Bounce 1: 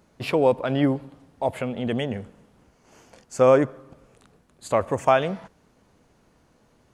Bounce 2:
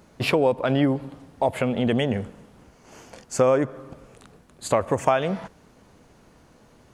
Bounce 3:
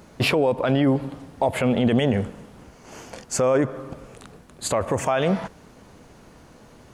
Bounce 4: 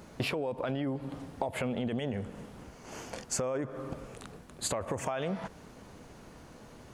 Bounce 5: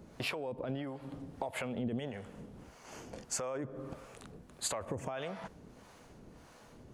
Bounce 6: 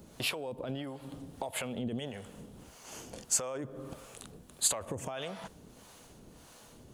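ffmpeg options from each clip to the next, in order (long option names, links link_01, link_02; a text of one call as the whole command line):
ffmpeg -i in.wav -af "acompressor=threshold=-25dB:ratio=3,volume=6.5dB" out.wav
ffmpeg -i in.wav -af "alimiter=limit=-16.5dB:level=0:latency=1:release=28,volume=5.5dB" out.wav
ffmpeg -i in.wav -af "acompressor=threshold=-27dB:ratio=10,volume=-2.5dB" out.wav
ffmpeg -i in.wav -filter_complex "[0:a]acrossover=split=560[link_01][link_02];[link_01]aeval=exprs='val(0)*(1-0.7/2+0.7/2*cos(2*PI*1.6*n/s))':channel_layout=same[link_03];[link_02]aeval=exprs='val(0)*(1-0.7/2-0.7/2*cos(2*PI*1.6*n/s))':channel_layout=same[link_04];[link_03][link_04]amix=inputs=2:normalize=0,volume=-1.5dB" out.wav
ffmpeg -i in.wav -af "aexciter=amount=2.1:drive=5.8:freq=2900" out.wav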